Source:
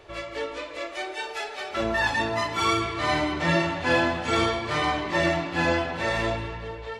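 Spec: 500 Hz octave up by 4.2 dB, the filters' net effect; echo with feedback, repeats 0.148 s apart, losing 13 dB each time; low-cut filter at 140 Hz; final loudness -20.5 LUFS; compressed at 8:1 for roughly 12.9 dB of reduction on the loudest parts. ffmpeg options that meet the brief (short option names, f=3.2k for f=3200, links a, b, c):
-af "highpass=140,equalizer=f=500:t=o:g=5.5,acompressor=threshold=-29dB:ratio=8,aecho=1:1:148|296|444:0.224|0.0493|0.0108,volume=12dB"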